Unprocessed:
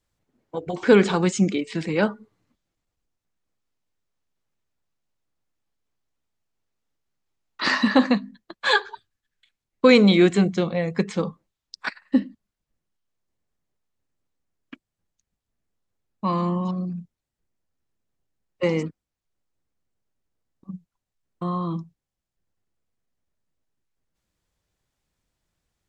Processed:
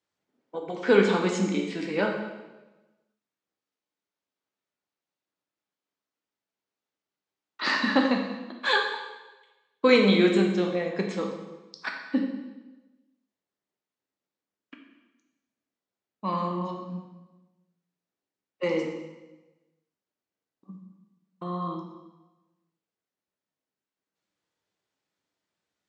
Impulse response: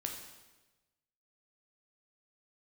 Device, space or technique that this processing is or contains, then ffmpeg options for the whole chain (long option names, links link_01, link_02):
supermarket ceiling speaker: -filter_complex "[0:a]highpass=240,lowpass=6400[link_01];[1:a]atrim=start_sample=2205[link_02];[link_01][link_02]afir=irnorm=-1:irlink=0,volume=-2.5dB"